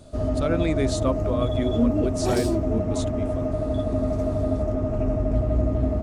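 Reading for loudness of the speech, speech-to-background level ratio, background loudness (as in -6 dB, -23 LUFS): -30.0 LUFS, -5.0 dB, -25.0 LUFS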